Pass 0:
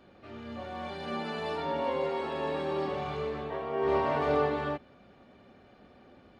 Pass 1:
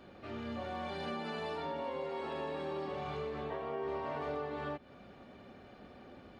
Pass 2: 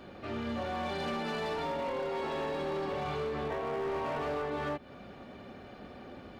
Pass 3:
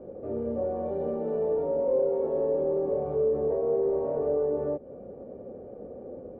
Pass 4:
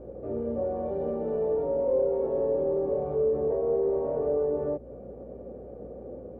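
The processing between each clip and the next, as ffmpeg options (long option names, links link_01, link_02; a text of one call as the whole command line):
ffmpeg -i in.wav -af "acompressor=threshold=-39dB:ratio=6,volume=2.5dB" out.wav
ffmpeg -i in.wav -af "asoftclip=type=hard:threshold=-36.5dB,volume=6dB" out.wav
ffmpeg -i in.wav -af "lowpass=frequency=500:width_type=q:width=5.7" out.wav
ffmpeg -i in.wav -af "aeval=exprs='val(0)+0.00316*(sin(2*PI*60*n/s)+sin(2*PI*2*60*n/s)/2+sin(2*PI*3*60*n/s)/3+sin(2*PI*4*60*n/s)/4+sin(2*PI*5*60*n/s)/5)':channel_layout=same" out.wav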